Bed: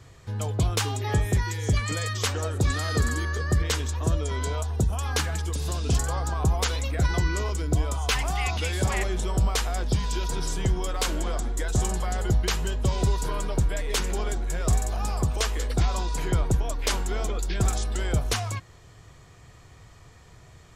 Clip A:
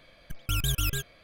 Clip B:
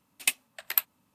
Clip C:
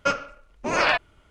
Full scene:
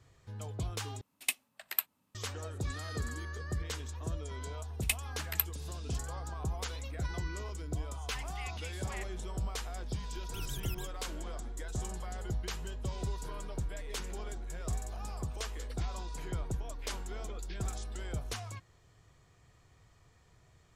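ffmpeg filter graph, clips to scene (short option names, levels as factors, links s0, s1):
-filter_complex "[2:a]asplit=2[s0][s1];[0:a]volume=0.224,asplit=2[s2][s3];[s2]atrim=end=1.014[s4];[s0]atrim=end=1.14,asetpts=PTS-STARTPTS,volume=0.473[s5];[s3]atrim=start=2.146[s6];[s1]atrim=end=1.14,asetpts=PTS-STARTPTS,volume=0.501,afade=t=in:d=0.004:c=hsin,afade=t=out:st=1.136:d=0.004:c=hsin,adelay=4620[s7];[1:a]atrim=end=1.23,asetpts=PTS-STARTPTS,volume=0.188,afade=t=in:d=0.004:c=hsin,afade=t=out:st=1.226:d=0.004:c=hsin,adelay=9850[s8];[s4][s5]acrossfade=d=0.004:c1=hsin:c2=hsin[s9];[s9][s6]acrossfade=d=0.004:c1=hsin:c2=hsin[s10];[s10][s7][s8]amix=inputs=3:normalize=0"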